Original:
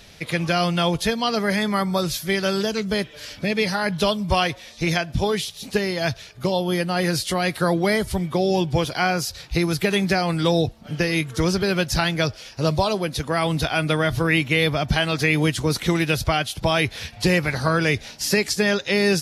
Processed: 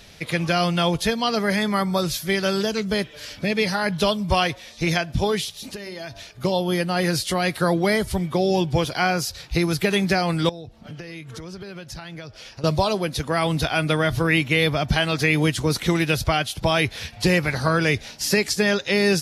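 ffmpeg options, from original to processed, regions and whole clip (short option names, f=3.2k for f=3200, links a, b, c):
-filter_complex "[0:a]asettb=1/sr,asplit=3[a][b][c];[a]atrim=end=5.564[d];[b]atrim=start=5.56:end=6.31,asetpts=PTS-STARTPTS,afade=t=in:d=0.004:c=qsin,afade=t=out:st=0.746:d=0.004:c=qsin,aecho=1:1:3.3:0.32,atrim=end_sample=33075,bandreject=f=97.81:t=h:w=4,bandreject=f=195.62:t=h:w=4,bandreject=f=293.43:t=h:w=4,bandreject=f=391.24:t=h:w=4,bandreject=f=489.05:t=h:w=4,bandreject=f=586.86:t=h:w=4,bandreject=f=684.67:t=h:w=4,bandreject=f=782.48:t=h:w=4,bandreject=f=880.29:t=h:w=4,bandreject=f=978.1:t=h:w=4,bandreject=f=1.07591k:t=h:w=4,acompressor=threshold=-31dB:ratio=6:attack=3.2:release=140:knee=1:detection=peak[e];[c]atrim=start=6.306[f];[d][e]acrossfade=d=0.004:c1=hsin:c2=qsin[g];[g][f]acrossfade=d=0.004:c1=qsin:c2=hsin,asettb=1/sr,asplit=3[h][i][j];[h]atrim=end=10.494[k];[i]atrim=start=10.49:end=12.64,asetpts=PTS-STARTPTS,afade=t=in:d=0.004:c=qsin,afade=t=out:st=2.146:d=0.004:c=qsin,highshelf=f=8.1k:g=-8.5,acompressor=threshold=-33dB:ratio=8:attack=3.2:release=140:knee=1:detection=peak[l];[j]atrim=start=12.636[m];[k][l]acrossfade=d=0.004:c1=hsin:c2=qsin[n];[n][m]acrossfade=d=0.004:c1=qsin:c2=hsin"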